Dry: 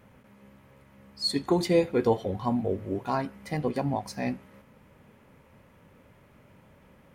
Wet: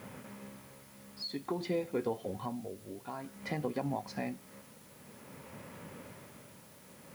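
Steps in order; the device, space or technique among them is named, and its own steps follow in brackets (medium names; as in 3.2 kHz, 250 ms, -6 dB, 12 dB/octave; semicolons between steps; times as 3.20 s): medium wave at night (band-pass 120–4100 Hz; compression 5:1, threshold -42 dBFS, peak gain reduction 21.5 dB; tremolo 0.52 Hz, depth 69%; whistle 10 kHz -75 dBFS; white noise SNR 20 dB); trim +9 dB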